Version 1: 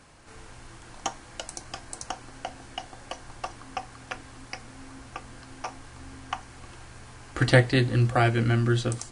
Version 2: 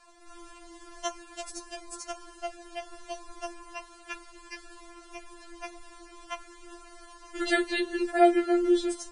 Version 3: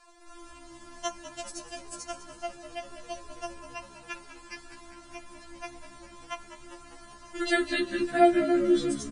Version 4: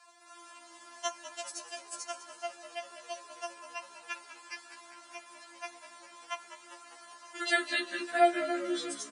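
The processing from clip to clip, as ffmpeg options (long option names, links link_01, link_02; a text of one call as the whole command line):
ffmpeg -i in.wav -af "afftfilt=real='re*4*eq(mod(b,16),0)':imag='im*4*eq(mod(b,16),0)':win_size=2048:overlap=0.75" out.wav
ffmpeg -i in.wav -filter_complex "[0:a]asplit=7[link_01][link_02][link_03][link_04][link_05][link_06][link_07];[link_02]adelay=200,afreqshift=-68,volume=-12.5dB[link_08];[link_03]adelay=400,afreqshift=-136,volume=-17.9dB[link_09];[link_04]adelay=600,afreqshift=-204,volume=-23.2dB[link_10];[link_05]adelay=800,afreqshift=-272,volume=-28.6dB[link_11];[link_06]adelay=1000,afreqshift=-340,volume=-33.9dB[link_12];[link_07]adelay=1200,afreqshift=-408,volume=-39.3dB[link_13];[link_01][link_08][link_09][link_10][link_11][link_12][link_13]amix=inputs=7:normalize=0" out.wav
ffmpeg -i in.wav -af "highpass=650" out.wav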